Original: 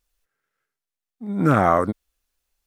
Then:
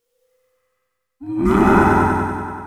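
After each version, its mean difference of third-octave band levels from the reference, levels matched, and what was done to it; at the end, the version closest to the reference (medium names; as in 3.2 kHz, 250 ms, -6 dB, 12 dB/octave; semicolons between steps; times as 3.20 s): 8.5 dB: every band turned upside down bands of 500 Hz; multi-head delay 96 ms, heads first and second, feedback 54%, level -6 dB; gated-style reverb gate 350 ms flat, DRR -1.5 dB; dynamic bell 1 kHz, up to -5 dB, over -26 dBFS, Q 0.89; trim +1 dB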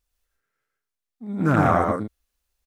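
4.0 dB: peaking EQ 64 Hz +7 dB 0.99 oct; on a send: loudspeakers at several distances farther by 40 m -3 dB, 53 m -6 dB; on the sum: loudspeaker Doppler distortion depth 0.21 ms; trim -3.5 dB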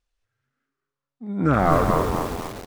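6.0 dB: distance through air 80 m; on a send: frequency-shifting echo 213 ms, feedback 50%, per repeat -140 Hz, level -5 dB; on the sum: bit-crushed delay 248 ms, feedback 55%, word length 5-bit, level -5.5 dB; trim -2 dB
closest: second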